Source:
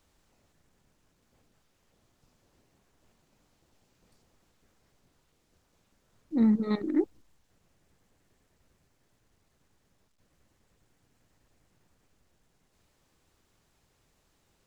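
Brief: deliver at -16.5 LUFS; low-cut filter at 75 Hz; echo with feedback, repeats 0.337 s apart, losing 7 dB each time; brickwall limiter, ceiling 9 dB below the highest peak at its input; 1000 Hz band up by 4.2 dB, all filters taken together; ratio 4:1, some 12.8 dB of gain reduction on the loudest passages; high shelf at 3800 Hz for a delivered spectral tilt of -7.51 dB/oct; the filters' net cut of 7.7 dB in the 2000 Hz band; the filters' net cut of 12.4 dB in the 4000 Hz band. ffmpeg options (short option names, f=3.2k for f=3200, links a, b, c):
-af "highpass=75,equalizer=f=1k:t=o:g=8,equalizer=f=2k:t=o:g=-7.5,highshelf=f=3.8k:g=-7,equalizer=f=4k:t=o:g=-8,acompressor=threshold=-35dB:ratio=4,alimiter=level_in=11.5dB:limit=-24dB:level=0:latency=1,volume=-11.5dB,aecho=1:1:337|674|1011|1348|1685:0.447|0.201|0.0905|0.0407|0.0183,volume=29dB"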